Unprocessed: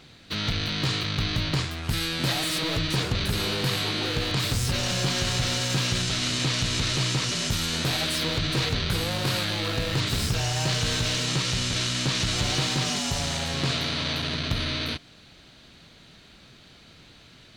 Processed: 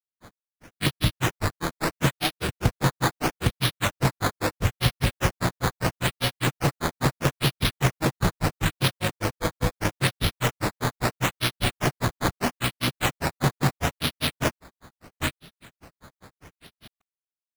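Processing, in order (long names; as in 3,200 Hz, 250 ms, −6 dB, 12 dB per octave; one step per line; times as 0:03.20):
granular cloud 113 ms, grains 5 per second, spray 896 ms
sample-and-hold swept by an LFO 11×, swing 100% 0.76 Hz
level +6.5 dB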